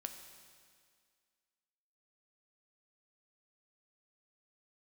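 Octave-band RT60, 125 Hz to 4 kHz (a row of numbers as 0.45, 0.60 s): 1.6, 2.0, 2.0, 2.0, 2.0, 2.0 s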